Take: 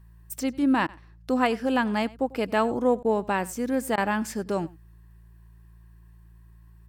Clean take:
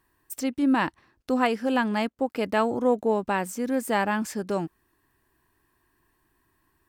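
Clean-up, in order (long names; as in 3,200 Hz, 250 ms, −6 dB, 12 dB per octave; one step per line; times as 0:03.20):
hum removal 56.3 Hz, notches 3
repair the gap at 0:00.87/0:03.03/0:03.96, 15 ms
echo removal 95 ms −22 dB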